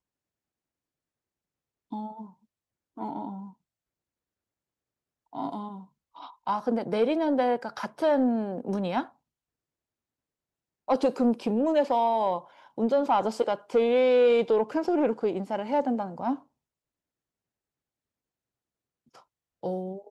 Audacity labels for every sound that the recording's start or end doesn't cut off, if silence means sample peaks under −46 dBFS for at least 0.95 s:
1.920000	3.520000	sound
5.330000	9.090000	sound
10.880000	16.390000	sound